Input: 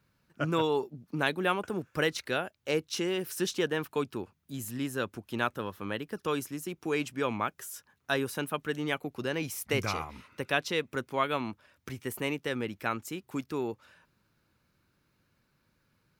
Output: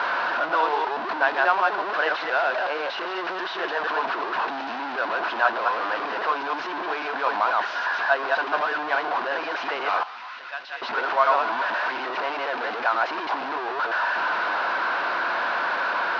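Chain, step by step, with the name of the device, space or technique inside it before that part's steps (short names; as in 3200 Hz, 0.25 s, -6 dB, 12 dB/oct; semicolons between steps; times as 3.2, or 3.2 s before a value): reverse delay 0.121 s, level -1 dB; digital answering machine (BPF 370–3000 Hz; delta modulation 32 kbps, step -25 dBFS; speaker cabinet 450–3800 Hz, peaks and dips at 450 Hz -3 dB, 700 Hz +10 dB, 1000 Hz +9 dB, 1500 Hz +8 dB, 2200 Hz -4 dB, 3300 Hz -4 dB); 10.03–10.82 passive tone stack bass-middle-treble 5-5-5; gain +2 dB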